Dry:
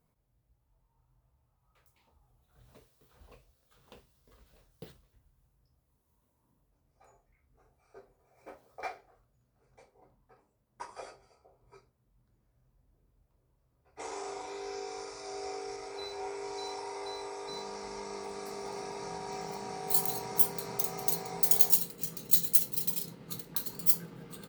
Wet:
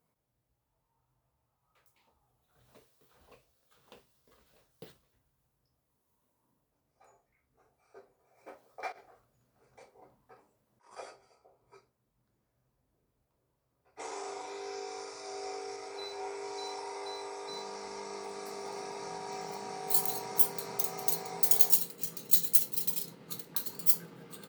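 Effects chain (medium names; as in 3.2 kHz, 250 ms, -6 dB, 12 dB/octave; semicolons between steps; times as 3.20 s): high-pass 230 Hz 6 dB/octave; 8.92–10.95 s: compressor with a negative ratio -58 dBFS, ratio -1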